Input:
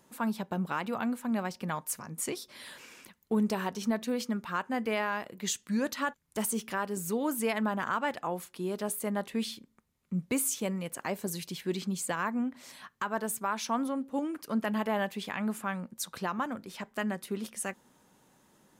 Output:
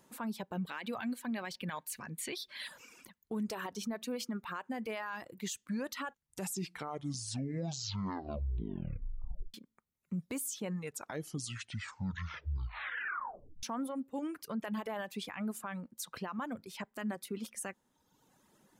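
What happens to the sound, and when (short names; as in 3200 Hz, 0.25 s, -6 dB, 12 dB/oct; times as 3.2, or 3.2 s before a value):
0.56–2.68 spectral gain 1500–4700 Hz +8 dB
6.03 tape stop 3.51 s
10.55 tape stop 3.08 s
whole clip: reverb removal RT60 0.95 s; limiter -28.5 dBFS; gain -1.5 dB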